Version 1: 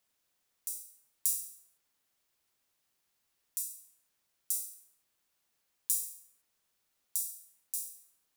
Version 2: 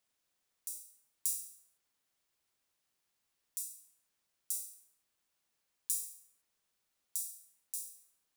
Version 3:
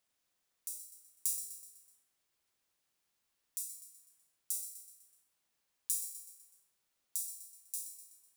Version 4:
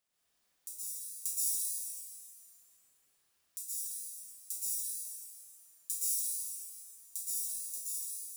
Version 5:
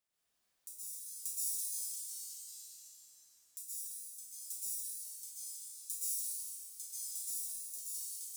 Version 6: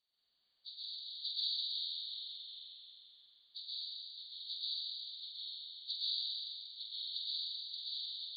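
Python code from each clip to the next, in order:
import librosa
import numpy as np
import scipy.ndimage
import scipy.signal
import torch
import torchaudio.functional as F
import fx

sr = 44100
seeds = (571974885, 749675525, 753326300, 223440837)

y1 = fx.peak_eq(x, sr, hz=14000.0, db=-6.5, octaves=0.23)
y1 = y1 * 10.0 ** (-3.0 / 20.0)
y2 = fx.echo_feedback(y1, sr, ms=125, feedback_pct=51, wet_db=-12.0)
y3 = fx.rev_plate(y2, sr, seeds[0], rt60_s=2.2, hf_ratio=0.95, predelay_ms=105, drr_db=-8.0)
y3 = y3 * 10.0 ** (-3.0 / 20.0)
y4 = fx.echo_pitch(y3, sr, ms=177, semitones=-2, count=3, db_per_echo=-6.0)
y4 = y4 * 10.0 ** (-4.5 / 20.0)
y5 = fx.freq_compress(y4, sr, knee_hz=2800.0, ratio=4.0)
y5 = y5 * 10.0 ** (-3.5 / 20.0)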